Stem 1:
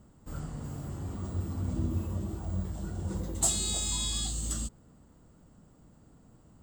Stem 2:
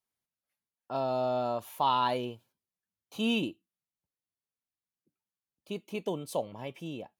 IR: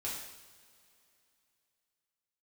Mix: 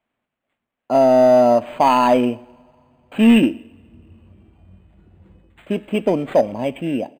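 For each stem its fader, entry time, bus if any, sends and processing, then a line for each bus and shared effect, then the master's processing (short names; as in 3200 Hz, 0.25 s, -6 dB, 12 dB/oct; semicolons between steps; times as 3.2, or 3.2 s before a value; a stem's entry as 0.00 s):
-14.5 dB, 2.15 s, no send, auto duck -8 dB, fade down 0.30 s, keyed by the second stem
+2.5 dB, 0.00 s, send -19 dB, fifteen-band EQ 250 Hz +12 dB, 630 Hz +10 dB, 2500 Hz +9 dB; sine folder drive 3 dB, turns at -8.5 dBFS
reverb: on, pre-delay 3 ms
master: decimation joined by straight lines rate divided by 8×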